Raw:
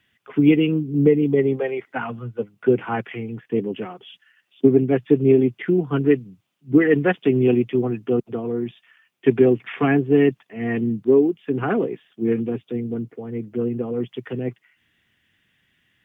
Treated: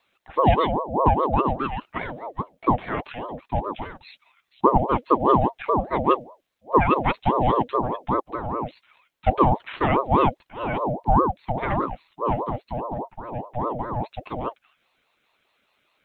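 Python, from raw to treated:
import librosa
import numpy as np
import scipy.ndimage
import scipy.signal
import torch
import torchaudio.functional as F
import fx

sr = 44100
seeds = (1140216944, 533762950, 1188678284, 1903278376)

y = fx.ring_lfo(x, sr, carrier_hz=590.0, swing_pct=40, hz=4.9)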